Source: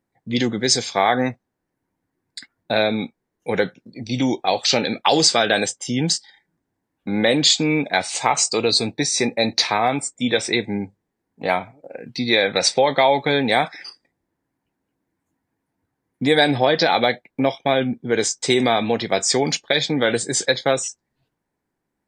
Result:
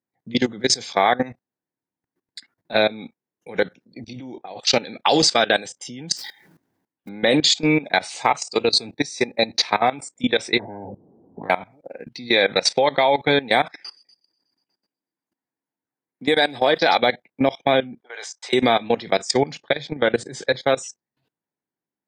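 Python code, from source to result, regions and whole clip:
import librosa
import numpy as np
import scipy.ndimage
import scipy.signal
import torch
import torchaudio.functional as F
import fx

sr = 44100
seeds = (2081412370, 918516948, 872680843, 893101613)

y = fx.chain(x, sr, fx.lowpass(hz=1400.0, slope=6),
    fx.over_compress(threshold_db=-25.0, ratio=-0.5), at=(4.13, 4.6))
y = fx.chain(y, sr, fx.mod_noise(seeds[0], snr_db=18),
    fx.sustainer(db_per_s=68.0), at=(6.16, 7.09))
y = fx.chain(y, sr, fx.cheby2_lowpass(hz=2400.0, order=4, stop_db=60),
    fx.spectral_comp(ratio=10.0), at=(10.59, 11.5))
y = fx.chain(y, sr, fx.highpass(hz=260.0, slope=6),
    fx.echo_wet_highpass(ms=122, feedback_pct=63, hz=5000.0, wet_db=-10), at=(13.84, 16.98))
y = fx.chain(y, sr, fx.highpass(hz=700.0, slope=24),
    fx.high_shelf(hz=3600.0, db=-10.5), at=(18.0, 18.53))
y = fx.chain(y, sr, fx.lowpass(hz=2600.0, slope=6),
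    fx.peak_eq(hz=140.0, db=5.0, octaves=0.42), at=(19.37, 20.59))
y = scipy.signal.sosfilt(scipy.signal.butter(2, 120.0, 'highpass', fs=sr, output='sos'), y)
y = fx.peak_eq(y, sr, hz=8000.0, db=-5.0, octaves=0.51)
y = fx.level_steps(y, sr, step_db=19)
y = F.gain(torch.from_numpy(y), 3.0).numpy()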